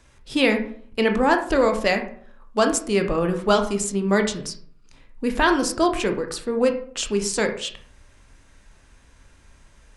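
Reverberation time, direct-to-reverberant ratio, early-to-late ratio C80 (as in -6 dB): 0.55 s, 5.0 dB, 14.0 dB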